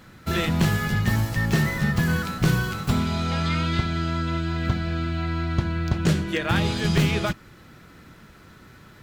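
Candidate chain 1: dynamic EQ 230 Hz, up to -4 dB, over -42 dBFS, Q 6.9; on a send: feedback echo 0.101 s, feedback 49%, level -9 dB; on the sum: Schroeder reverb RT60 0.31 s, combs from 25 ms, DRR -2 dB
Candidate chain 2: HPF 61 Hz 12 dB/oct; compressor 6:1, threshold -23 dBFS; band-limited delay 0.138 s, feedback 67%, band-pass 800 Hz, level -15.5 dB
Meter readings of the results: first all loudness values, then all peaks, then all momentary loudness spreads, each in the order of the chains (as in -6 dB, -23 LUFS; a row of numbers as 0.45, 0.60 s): -19.5, -28.0 LUFS; -3.0, -13.0 dBFS; 4, 3 LU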